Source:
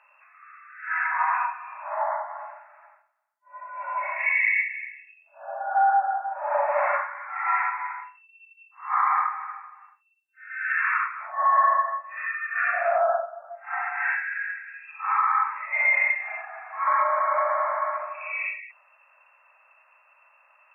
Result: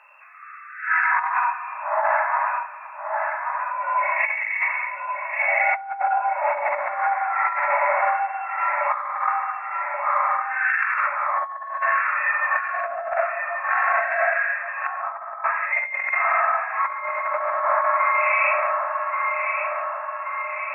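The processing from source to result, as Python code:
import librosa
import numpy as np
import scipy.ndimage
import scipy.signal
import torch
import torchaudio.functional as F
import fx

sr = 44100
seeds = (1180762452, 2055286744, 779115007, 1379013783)

y = fx.echo_feedback(x, sr, ms=1131, feedback_pct=60, wet_db=-7)
y = fx.over_compress(y, sr, threshold_db=-26.0, ratio=-0.5)
y = fx.bessel_lowpass(y, sr, hz=830.0, order=2, at=(14.87, 15.44))
y = y * librosa.db_to_amplitude(5.0)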